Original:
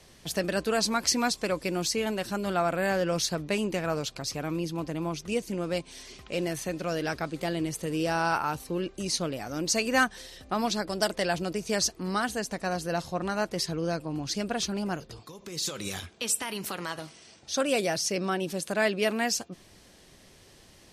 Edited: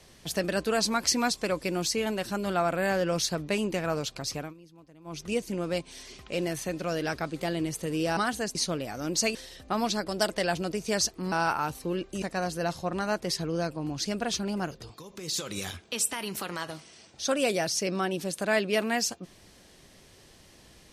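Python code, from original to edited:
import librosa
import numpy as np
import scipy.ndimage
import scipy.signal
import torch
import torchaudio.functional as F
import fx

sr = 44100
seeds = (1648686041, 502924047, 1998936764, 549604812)

y = fx.edit(x, sr, fx.fade_down_up(start_s=4.37, length_s=0.84, db=-21.0, fade_s=0.17),
    fx.swap(start_s=8.17, length_s=0.9, other_s=12.13, other_length_s=0.38),
    fx.cut(start_s=9.87, length_s=0.29), tone=tone)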